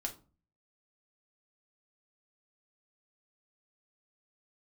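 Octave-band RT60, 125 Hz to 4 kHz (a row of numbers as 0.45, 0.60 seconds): 0.65, 0.55, 0.40, 0.35, 0.25, 0.20 seconds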